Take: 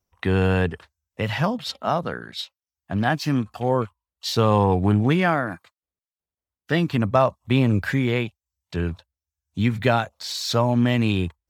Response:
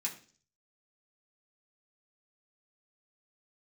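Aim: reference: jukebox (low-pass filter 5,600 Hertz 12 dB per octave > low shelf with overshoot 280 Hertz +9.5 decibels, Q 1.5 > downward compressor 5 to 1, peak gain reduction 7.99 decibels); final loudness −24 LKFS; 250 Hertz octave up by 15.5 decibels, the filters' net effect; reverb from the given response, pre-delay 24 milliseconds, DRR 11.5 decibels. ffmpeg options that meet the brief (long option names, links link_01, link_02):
-filter_complex "[0:a]equalizer=frequency=250:width_type=o:gain=8,asplit=2[link_01][link_02];[1:a]atrim=start_sample=2205,adelay=24[link_03];[link_02][link_03]afir=irnorm=-1:irlink=0,volume=-13dB[link_04];[link_01][link_04]amix=inputs=2:normalize=0,lowpass=5600,lowshelf=frequency=280:width_type=q:width=1.5:gain=9.5,acompressor=threshold=-9dB:ratio=5,volume=-8.5dB"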